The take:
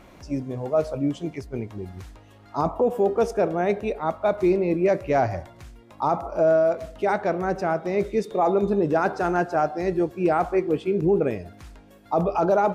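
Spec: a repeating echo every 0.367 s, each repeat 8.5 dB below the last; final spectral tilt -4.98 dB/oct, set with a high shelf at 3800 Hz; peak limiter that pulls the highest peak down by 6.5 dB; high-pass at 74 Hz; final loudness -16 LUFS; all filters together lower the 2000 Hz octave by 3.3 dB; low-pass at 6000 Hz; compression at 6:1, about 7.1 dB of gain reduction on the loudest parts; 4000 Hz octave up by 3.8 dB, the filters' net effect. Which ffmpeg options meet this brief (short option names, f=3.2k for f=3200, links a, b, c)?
-af "highpass=74,lowpass=6k,equalizer=f=2k:t=o:g=-7,highshelf=f=3.8k:g=5,equalizer=f=4k:t=o:g=4.5,acompressor=threshold=-24dB:ratio=6,alimiter=limit=-21dB:level=0:latency=1,aecho=1:1:367|734|1101|1468:0.376|0.143|0.0543|0.0206,volume=15dB"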